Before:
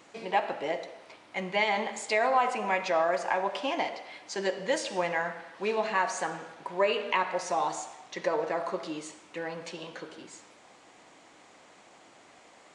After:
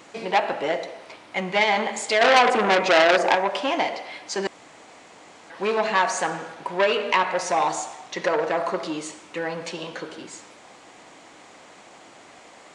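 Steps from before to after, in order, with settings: 2.21–3.35 bell 350 Hz +12 dB 1.8 oct; 4.47–5.5 room tone; core saturation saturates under 2800 Hz; gain +8 dB

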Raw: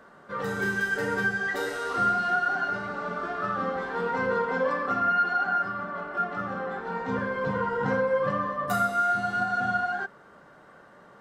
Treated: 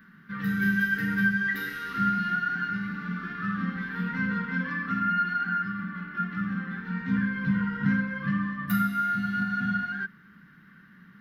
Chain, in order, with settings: EQ curve 120 Hz 0 dB, 190 Hz +11 dB, 630 Hz -30 dB, 1700 Hz +4 dB, 5500 Hz -6 dB, 8200 Hz -19 dB, 12000 Hz +7 dB

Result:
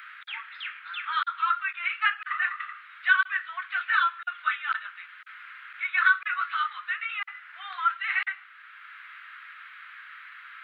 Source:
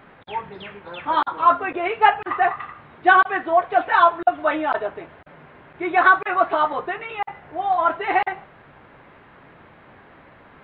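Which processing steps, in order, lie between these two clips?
Chebyshev high-pass 1300 Hz, order 5; three-band squash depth 40%

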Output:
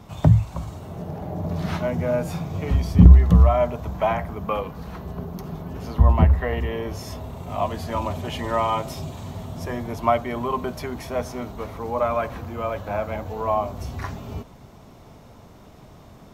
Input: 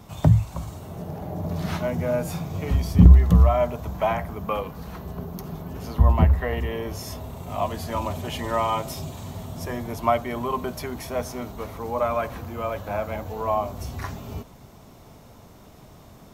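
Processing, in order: high shelf 7000 Hz -9 dB; gain +1.5 dB

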